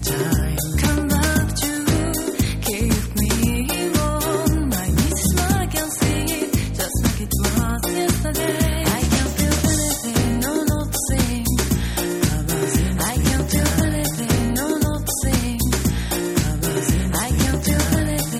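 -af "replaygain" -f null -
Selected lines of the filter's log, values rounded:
track_gain = +2.9 dB
track_peak = 0.369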